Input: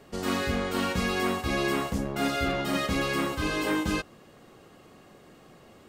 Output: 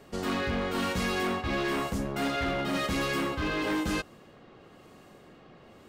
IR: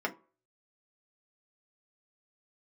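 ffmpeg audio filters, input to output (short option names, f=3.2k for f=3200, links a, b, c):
-filter_complex "[0:a]acrossover=split=4700[a][b];[a]volume=25.5dB,asoftclip=hard,volume=-25.5dB[c];[b]tremolo=f=1:d=0.96[d];[c][d]amix=inputs=2:normalize=0"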